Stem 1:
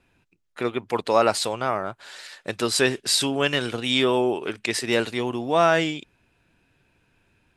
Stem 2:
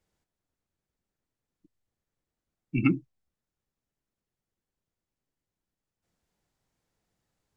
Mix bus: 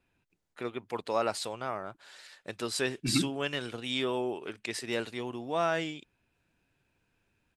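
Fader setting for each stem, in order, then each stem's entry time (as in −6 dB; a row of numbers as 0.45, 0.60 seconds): −10.5, −5.5 decibels; 0.00, 0.30 seconds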